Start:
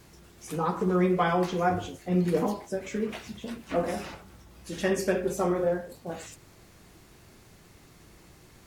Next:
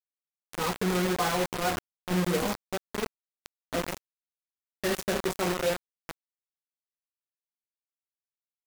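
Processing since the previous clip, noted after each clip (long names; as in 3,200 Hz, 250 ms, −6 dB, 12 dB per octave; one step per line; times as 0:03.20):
flanger 0.65 Hz, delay 6.8 ms, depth 4.3 ms, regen +60%
bit reduction 5 bits
level +1 dB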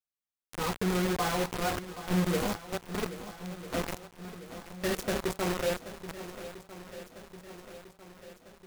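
low-shelf EQ 120 Hz +7 dB
feedback echo with a long and a short gap by turns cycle 1,299 ms, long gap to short 1.5 to 1, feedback 54%, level −13.5 dB
level −3 dB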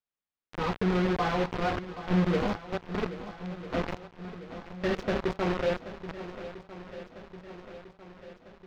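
high-frequency loss of the air 220 metres
level +3 dB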